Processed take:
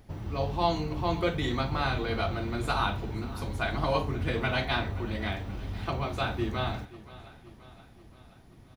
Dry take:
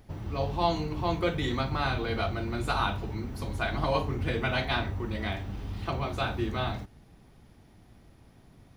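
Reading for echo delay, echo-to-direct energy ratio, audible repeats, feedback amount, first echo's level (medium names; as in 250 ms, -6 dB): 527 ms, -16.5 dB, 4, 57%, -18.0 dB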